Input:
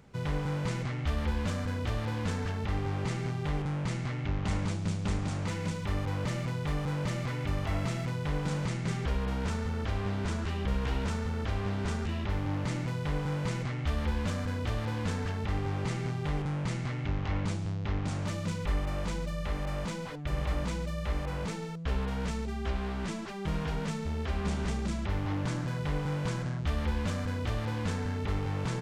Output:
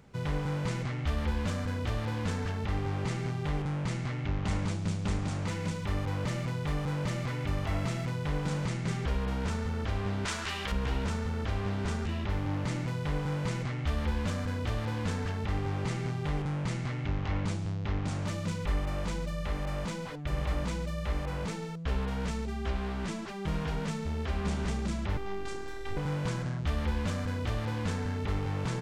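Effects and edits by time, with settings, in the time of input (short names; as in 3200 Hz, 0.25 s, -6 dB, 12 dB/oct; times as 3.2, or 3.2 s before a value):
10.25–10.72 tilt shelf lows -9.5 dB, about 640 Hz
25.17–25.97 robotiser 395 Hz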